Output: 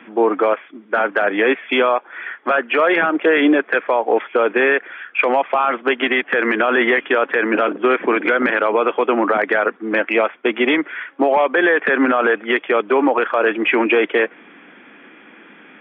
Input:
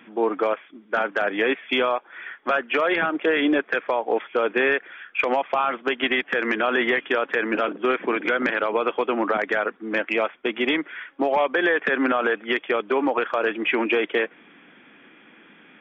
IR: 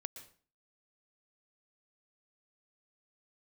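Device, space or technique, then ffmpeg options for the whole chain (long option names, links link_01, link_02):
DJ mixer with the lows and highs turned down: -filter_complex "[0:a]acrossover=split=170 3300:gain=0.178 1 0.141[link_01][link_02][link_03];[link_01][link_02][link_03]amix=inputs=3:normalize=0,alimiter=limit=-14.5dB:level=0:latency=1:release=18,volume=8dB"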